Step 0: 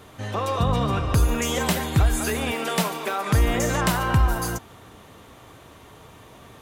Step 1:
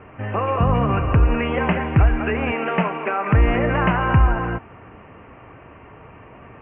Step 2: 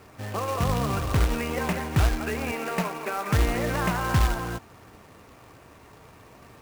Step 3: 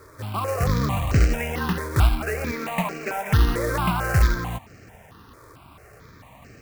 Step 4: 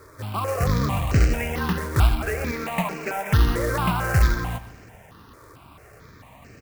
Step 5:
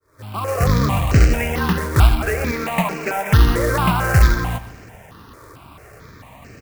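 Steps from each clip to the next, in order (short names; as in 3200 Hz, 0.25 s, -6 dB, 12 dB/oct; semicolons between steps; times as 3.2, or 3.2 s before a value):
steep low-pass 2800 Hz 96 dB/oct; gain +4 dB
companded quantiser 4-bit; gain -7.5 dB
step phaser 4.5 Hz 760–3500 Hz; gain +5 dB
feedback echo 0.128 s, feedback 46%, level -16 dB
opening faded in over 0.64 s; gain +5.5 dB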